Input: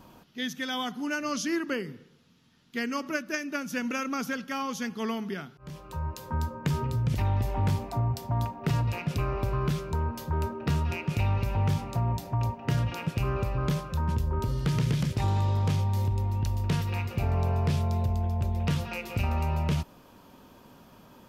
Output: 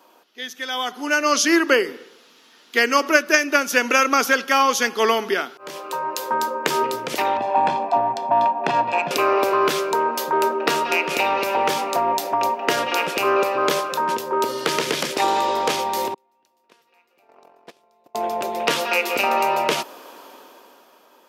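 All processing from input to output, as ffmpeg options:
-filter_complex "[0:a]asettb=1/sr,asplit=3[s0][s1][s2];[s0]atrim=end=7.374[s3];[s1]atrim=start=7.37:end=9.11,asetpts=PTS-STARTPTS,afade=t=in:d=0.004:c=qsin,afade=t=out:st=1.736:d=0.004:c=qsin,equalizer=f=1700:t=o:w=0.43:g=-6,adynamicsmooth=sensitivity=2:basefreq=1800,aecho=1:1:1.2:0.62,atrim=end_sample=76734[s4];[s2]atrim=start=9.106[s5];[s3][s4]acrossfade=d=0.004:c1=hsin:c2=qsin[s6];[s6][s5]acrossfade=d=0.004:c1=qsin:c2=hsin,asettb=1/sr,asplit=3[s7][s8][s9];[s7]atrim=end=16.144[s10];[s8]atrim=start=16.14:end=18.15,asetpts=PTS-STARTPTS,afade=t=in:d=0.004:c=qsin,afade=t=out:st=2.006:d=0.004:c=qsin,bandreject=f=50:t=h:w=6,bandreject=f=100:t=h:w=6,bandreject=f=150:t=h:w=6,bandreject=f=200:t=h:w=6,bandreject=f=250:t=h:w=6,bandreject=f=300:t=h:w=6,bandreject=f=350:t=h:w=6,bandreject=f=400:t=h:w=6,bandreject=f=450:t=h:w=6,agate=range=0.0112:threshold=0.0794:ratio=16:release=100:detection=peak[s11];[s9]atrim=start=18.146[s12];[s10][s11]acrossfade=d=0.004:c1=hsin:c2=qsin[s13];[s13][s12]acrossfade=d=0.004:c1=qsin:c2=hsin,highpass=f=360:w=0.5412,highpass=f=360:w=1.3066,dynaudnorm=f=130:g=17:m=5.62,volume=1.26"

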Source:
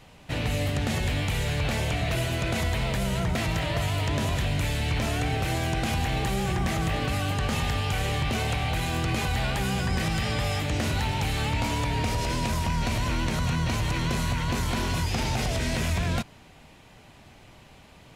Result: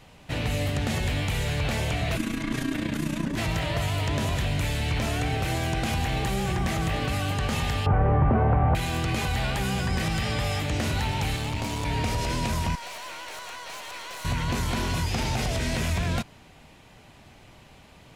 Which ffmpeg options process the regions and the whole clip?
-filter_complex "[0:a]asettb=1/sr,asplit=3[s0][s1][s2];[s0]atrim=end=2.174[s3];[s1]atrim=start=2.17:end=3.38,asetpts=PTS-STARTPTS,afade=t=in:d=0.004:c=qsin,afade=t=out:st=1.206:d=0.004:c=qsin,equalizer=f=460:t=o:w=1.3:g=5,afreqshift=-350,tremolo=f=29:d=0.667[s4];[s2]atrim=start=3.376[s5];[s3][s4]acrossfade=d=0.004:c1=hsin:c2=qsin[s6];[s6][s5]acrossfade=d=0.004:c1=qsin:c2=hsin,asettb=1/sr,asplit=3[s7][s8][s9];[s7]atrim=end=7.864[s10];[s8]atrim=start=7.86:end=8.75,asetpts=PTS-STARTPTS,afade=t=in:d=0.004:c=qsin,afade=t=out:st=0.886:d=0.004:c=qsin,lowpass=f=1300:w=0.5412,lowpass=f=1300:w=1.3066,acontrast=86[s11];[s9]atrim=start=8.746[s12];[s10][s11]acrossfade=d=0.004:c1=hsin:c2=qsin[s13];[s13][s12]acrossfade=d=0.004:c1=qsin:c2=hsin,asettb=1/sr,asplit=3[s14][s15][s16];[s14]atrim=end=11.364[s17];[s15]atrim=start=11.36:end=11.85,asetpts=PTS-STARTPTS,afade=t=in:d=0.004:c=qsin,afade=t=out:st=0.486:d=0.004:c=qsin,highpass=f=66:w=0.5412,highpass=f=66:w=1.3066,equalizer=f=1500:w=0.92:g=-4.5,aeval=exprs='clip(val(0),-1,0.0316)':c=same[s18];[s16]atrim=start=11.846[s19];[s17][s18]acrossfade=d=0.004:c1=hsin:c2=qsin[s20];[s20][s19]acrossfade=d=0.004:c1=qsin:c2=hsin,asettb=1/sr,asplit=3[s21][s22][s23];[s21]atrim=end=12.754[s24];[s22]atrim=start=12.75:end=14.25,asetpts=PTS-STARTPTS,afade=t=in:d=0.004:c=qsin,afade=t=out:st=1.496:d=0.004:c=qsin,highpass=f=510:w=0.5412,highpass=f=510:w=1.3066,aeval=exprs='(tanh(56.2*val(0)+0.5)-tanh(0.5))/56.2':c=same[s25];[s23]atrim=start=14.246[s26];[s24][s25]acrossfade=d=0.004:c1=hsin:c2=qsin[s27];[s27][s26]acrossfade=d=0.004:c1=qsin:c2=hsin"

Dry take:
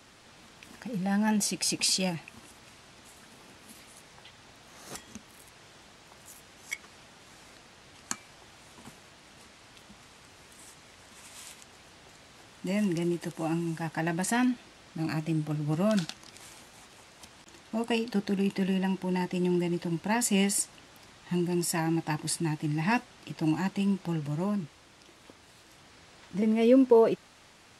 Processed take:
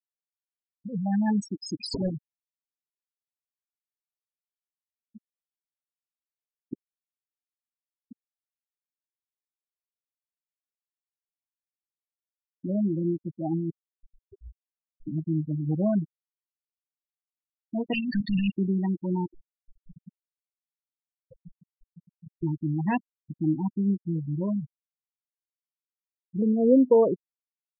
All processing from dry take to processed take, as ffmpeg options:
-filter_complex "[0:a]asettb=1/sr,asplit=3[s0][s1][s2];[s0]atrim=end=1.944[s3];[s1]atrim=start=1.94:end=6.74,asetpts=PTS-STARTPTS,afade=t=in:d=0.004:c=qsin,afade=t=out:st=4.796:d=0.004:c=qsin,bandreject=f=600:w=17,acrusher=samples=31:mix=1:aa=0.000001:lfo=1:lforange=18.6:lforate=1.6[s4];[s2]atrim=start=6.736[s5];[s3][s4]acrossfade=d=0.004:c1=hsin:c2=qsin[s6];[s6][s5]acrossfade=d=0.004:c1=qsin:c2=hsin,asettb=1/sr,asplit=3[s7][s8][s9];[s7]atrim=end=13.704[s10];[s8]atrim=start=13.7:end=15.07,asetpts=PTS-STARTPTS,afade=t=in:d=0.004:c=qsin,afade=t=out:st=1.366:d=0.004:c=qsin,acompressor=threshold=0.02:ratio=4:attack=3.2:release=140:knee=1:detection=peak,highpass=f=670:p=1,afreqshift=-310[s11];[s9]atrim=start=15.066[s12];[s10][s11]acrossfade=d=0.004:c1=hsin:c2=qsin[s13];[s13][s12]acrossfade=d=0.004:c1=qsin:c2=hsin,asettb=1/sr,asplit=3[s14][s15][s16];[s14]atrim=end=17.934[s17];[s15]atrim=start=17.93:end=18.51,asetpts=PTS-STARTPTS,afade=t=in:d=0.004:c=qsin,afade=t=out:st=0.576:d=0.004:c=qsin,lowshelf=f=170:g=-4.5,asplit=2[s18][s19];[s19]highpass=f=720:p=1,volume=35.5,asoftclip=type=tanh:threshold=0.141[s20];[s18][s20]amix=inputs=2:normalize=0,lowpass=f=7200:p=1,volume=0.501,asuperstop=centerf=640:order=20:qfactor=0.52[s21];[s16]atrim=start=18.506[s22];[s17][s21]acrossfade=d=0.004:c1=hsin:c2=qsin[s23];[s23][s22]acrossfade=d=0.004:c1=qsin:c2=hsin,asettb=1/sr,asplit=3[s24][s25][s26];[s24]atrim=end=19.304[s27];[s25]atrim=start=19.3:end=22.43,asetpts=PTS-STARTPTS,afade=t=in:d=0.004:c=qsin,afade=t=out:st=3.126:d=0.004:c=qsin,aeval=exprs='(mod(25.1*val(0)+1,2)-1)/25.1':c=same,acompressor=threshold=0.0141:ratio=5:attack=3.2:release=140:knee=1:detection=peak[s28];[s26]atrim=start=22.426[s29];[s27][s28]acrossfade=d=0.004:c1=hsin:c2=qsin[s30];[s30][s29]acrossfade=d=0.004:c1=qsin:c2=hsin,tiltshelf=f=830:g=3,afftfilt=real='re*gte(hypot(re,im),0.1)':imag='im*gte(hypot(re,im),0.1)':win_size=1024:overlap=0.75"

